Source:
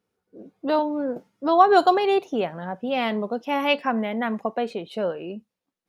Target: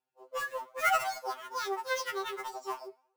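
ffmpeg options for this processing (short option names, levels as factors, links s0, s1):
-filter_complex "[0:a]highpass=83,asetrate=82026,aresample=44100,flanger=delay=8:depth=4.5:regen=89:speed=1.2:shape=triangular,acrossover=split=160[s0][s1];[s0]acompressor=threshold=0.0398:ratio=8[s2];[s2][s1]amix=inputs=2:normalize=0,acrossover=split=170|1000[s3][s4][s5];[s5]acrusher=bits=2:mode=log:mix=0:aa=0.000001[s6];[s3][s4][s6]amix=inputs=3:normalize=0,afftfilt=real='re*2.45*eq(mod(b,6),0)':imag='im*2.45*eq(mod(b,6),0)':win_size=2048:overlap=0.75,volume=0.631"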